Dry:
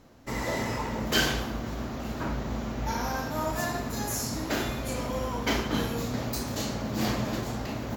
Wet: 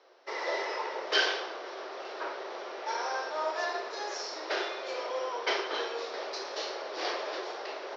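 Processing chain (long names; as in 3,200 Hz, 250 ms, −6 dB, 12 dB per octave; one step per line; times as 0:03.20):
Chebyshev band-pass filter 370–5,600 Hz, order 5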